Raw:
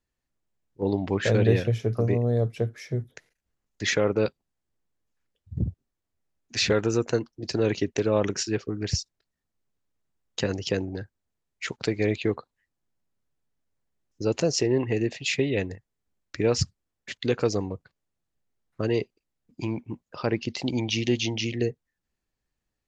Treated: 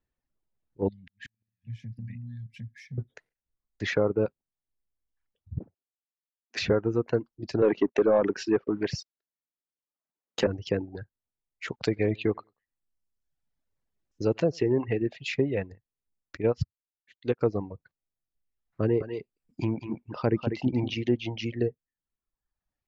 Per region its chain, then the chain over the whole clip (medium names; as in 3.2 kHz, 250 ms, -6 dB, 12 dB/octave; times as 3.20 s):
0.88–2.98 s: brick-wall FIR band-stop 260–1600 Hz + compression 2.5:1, threshold -39 dBFS + inverted gate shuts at -28 dBFS, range -40 dB
5.59–6.59 s: high-pass 550 Hz + three bands expanded up and down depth 70%
7.62–10.47 s: high-pass 250 Hz + waveshaping leveller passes 2
11.83–14.97 s: treble shelf 2.9 kHz +9 dB + feedback delay 94 ms, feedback 20%, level -20 dB
16.37–17.41 s: treble shelf 3.2 kHz +5 dB + upward expansion 2.5:1, over -33 dBFS
18.81–20.94 s: bass shelf 290 Hz +3.5 dB + delay 194 ms -5.5 dB + tape noise reduction on one side only encoder only
whole clip: reverb removal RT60 1 s; low-pass 1.8 kHz 6 dB/octave; low-pass that closes with the level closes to 1.4 kHz, closed at -20 dBFS